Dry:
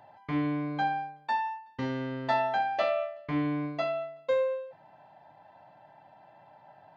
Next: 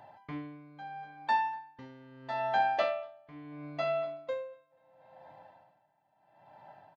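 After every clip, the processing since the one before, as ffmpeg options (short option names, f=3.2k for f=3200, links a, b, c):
-filter_complex "[0:a]asplit=2[a][b];[b]adelay=243,lowpass=f=3.9k:p=1,volume=-17dB,asplit=2[c][d];[d]adelay=243,lowpass=f=3.9k:p=1,volume=0.54,asplit=2[e][f];[f]adelay=243,lowpass=f=3.9k:p=1,volume=0.54,asplit=2[g][h];[h]adelay=243,lowpass=f=3.9k:p=1,volume=0.54,asplit=2[i][j];[j]adelay=243,lowpass=f=3.9k:p=1,volume=0.54[k];[a][c][e][g][i][k]amix=inputs=6:normalize=0,aeval=exprs='val(0)*pow(10,-21*(0.5-0.5*cos(2*PI*0.75*n/s))/20)':c=same,volume=1.5dB"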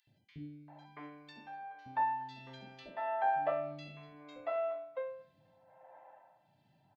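-filter_complex "[0:a]acrossover=split=1400[a][b];[b]alimiter=level_in=11dB:limit=-24dB:level=0:latency=1:release=460,volume=-11dB[c];[a][c]amix=inputs=2:normalize=0,acrossover=split=330|2700[d][e][f];[d]adelay=70[g];[e]adelay=680[h];[g][h][f]amix=inputs=3:normalize=0,volume=-2.5dB"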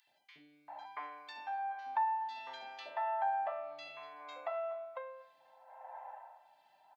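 -af "acompressor=threshold=-45dB:ratio=3,highpass=f=850:t=q:w=2.1,volume=4.5dB"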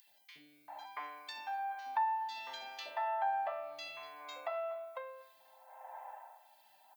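-af "aemphasis=mode=production:type=75fm"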